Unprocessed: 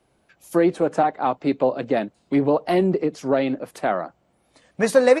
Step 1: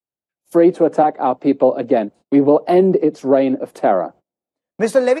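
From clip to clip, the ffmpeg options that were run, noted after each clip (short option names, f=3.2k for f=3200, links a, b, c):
-filter_complex "[0:a]agate=range=-33dB:threshold=-45dB:ratio=16:detection=peak,highpass=49,acrossover=split=210|800|3200[a][b][c][d];[b]dynaudnorm=f=170:g=5:m=16.5dB[e];[a][e][c][d]amix=inputs=4:normalize=0,volume=-1.5dB"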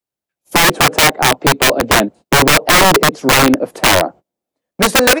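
-af "aeval=exprs='(mod(3.35*val(0)+1,2)-1)/3.35':c=same,volume=6.5dB"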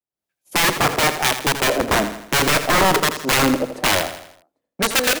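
-filter_complex "[0:a]dynaudnorm=f=130:g=3:m=11.5dB,acrossover=split=1600[a][b];[a]aeval=exprs='val(0)*(1-0.5/2+0.5/2*cos(2*PI*1.1*n/s))':c=same[c];[b]aeval=exprs='val(0)*(1-0.5/2-0.5/2*cos(2*PI*1.1*n/s))':c=same[d];[c][d]amix=inputs=2:normalize=0,asplit=2[e][f];[f]aecho=0:1:82|164|246|328|410:0.299|0.143|0.0688|0.033|0.0158[g];[e][g]amix=inputs=2:normalize=0,volume=-8dB"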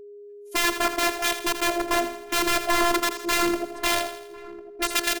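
-filter_complex "[0:a]asplit=2[a][b];[b]adelay=1050,volume=-18dB,highshelf=f=4k:g=-23.6[c];[a][c]amix=inputs=2:normalize=0,afftfilt=real='hypot(re,im)*cos(PI*b)':imag='0':win_size=512:overlap=0.75,aeval=exprs='val(0)+0.0126*sin(2*PI*410*n/s)':c=same,volume=-2.5dB"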